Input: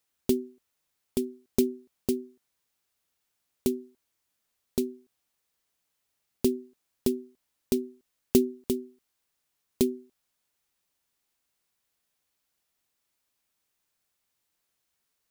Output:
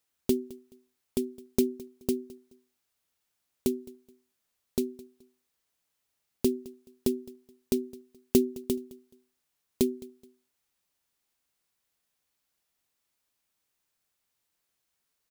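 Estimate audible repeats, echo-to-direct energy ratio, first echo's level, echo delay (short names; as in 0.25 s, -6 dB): 2, -20.5 dB, -21.0 dB, 0.213 s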